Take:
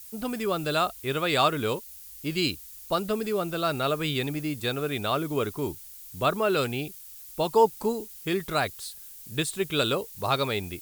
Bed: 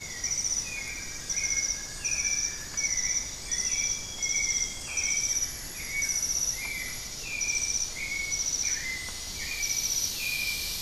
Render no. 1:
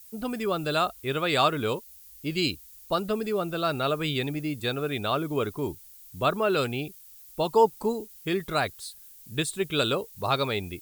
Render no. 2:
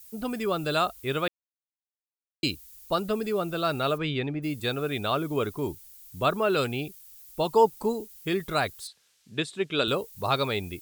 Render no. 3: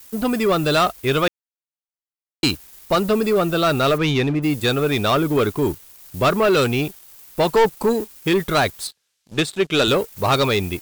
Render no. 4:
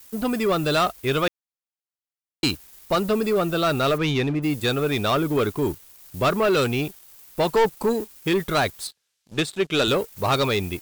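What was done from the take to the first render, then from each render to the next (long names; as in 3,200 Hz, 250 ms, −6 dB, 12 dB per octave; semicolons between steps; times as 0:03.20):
broadband denoise 6 dB, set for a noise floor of −45 dBFS
0:01.28–0:02.43: silence; 0:03.97–0:04.42: low-pass filter 4,000 Hz → 2,000 Hz; 0:08.87–0:09.88: band-pass filter 170–4,800 Hz
leveller curve on the samples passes 3
level −3.5 dB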